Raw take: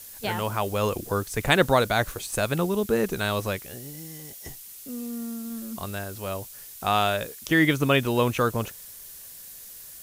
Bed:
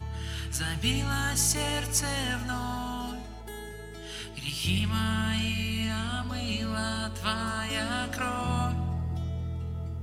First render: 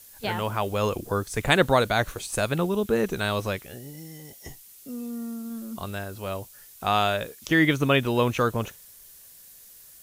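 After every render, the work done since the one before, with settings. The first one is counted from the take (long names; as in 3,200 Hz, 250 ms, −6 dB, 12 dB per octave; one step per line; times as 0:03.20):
noise reduction from a noise print 6 dB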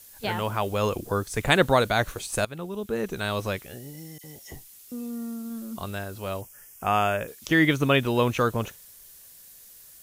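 0:02.45–0:03.57: fade in, from −14.5 dB
0:04.18–0:04.92: all-pass dispersion lows, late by 58 ms, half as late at 2,300 Hz
0:06.41–0:07.28: Butterworth band-reject 4,000 Hz, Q 1.8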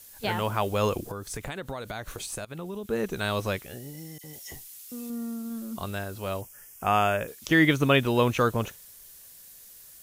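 0:01.08–0:02.86: downward compressor 10 to 1, threshold −31 dBFS
0:04.33–0:05.10: tilt shelving filter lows −4 dB, about 1,200 Hz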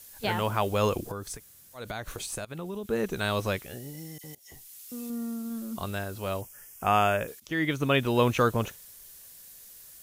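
0:01.36–0:01.78: fill with room tone, crossfade 0.10 s
0:04.35–0:05.07: fade in equal-power, from −21.5 dB
0:07.40–0:08.26: fade in, from −14 dB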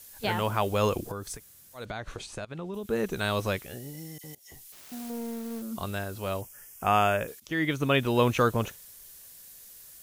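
0:01.85–0:02.74: high-frequency loss of the air 89 metres
0:04.72–0:05.62: phase distortion by the signal itself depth 0.84 ms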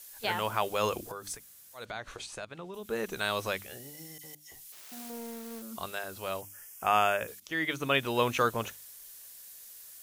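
low-shelf EQ 400 Hz −10.5 dB
mains-hum notches 50/100/150/200/250/300 Hz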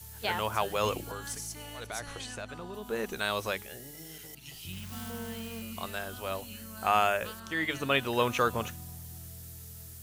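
mix in bed −15 dB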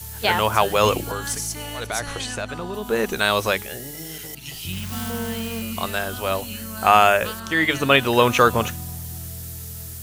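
level +11.5 dB
brickwall limiter −2 dBFS, peak gain reduction 1.5 dB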